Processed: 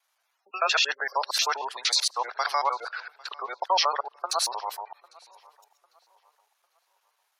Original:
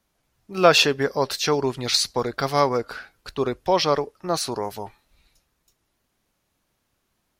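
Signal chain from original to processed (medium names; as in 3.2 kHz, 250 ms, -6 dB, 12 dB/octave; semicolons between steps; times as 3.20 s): time reversed locally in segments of 77 ms; spectral gate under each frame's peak -25 dB strong; high-pass 780 Hz 24 dB/octave; peak limiter -14.5 dBFS, peak gain reduction 9.5 dB; filtered feedback delay 800 ms, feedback 35%, low-pass 4.1 kHz, level -24 dB; trim +2 dB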